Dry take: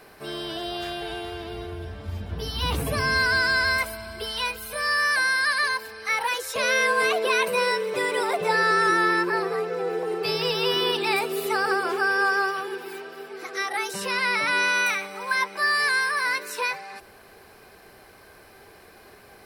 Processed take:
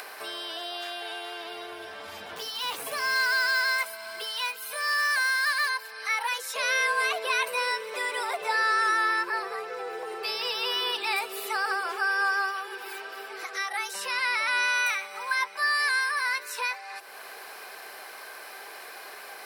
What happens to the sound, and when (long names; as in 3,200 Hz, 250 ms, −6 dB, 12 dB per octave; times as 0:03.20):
0:02.36–0:05.70: floating-point word with a short mantissa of 2 bits
whole clip: high-pass filter 720 Hz 12 dB per octave; upward compression, threshold −28 dBFS; level −2.5 dB